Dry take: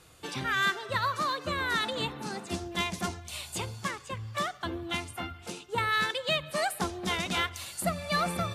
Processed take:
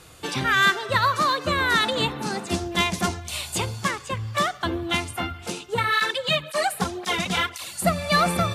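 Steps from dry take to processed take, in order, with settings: 5.74–7.85 s: cancelling through-zero flanger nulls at 1.9 Hz, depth 3.6 ms; trim +8.5 dB

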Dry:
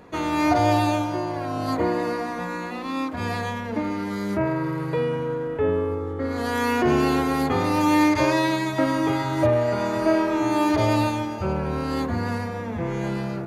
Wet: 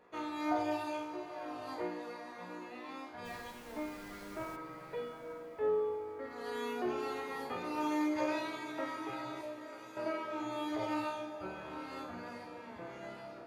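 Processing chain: 9.41–9.97 s: pre-emphasis filter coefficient 0.8; reverb removal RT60 0.77 s; tone controls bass -14 dB, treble -6 dB; feedback comb 61 Hz, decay 0.69 s, harmonics all, mix 90%; 3.24–4.55 s: added noise pink -54 dBFS; on a send: echo that smears into a reverb 872 ms, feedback 46%, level -12 dB; on the sum: trim -1.5 dB

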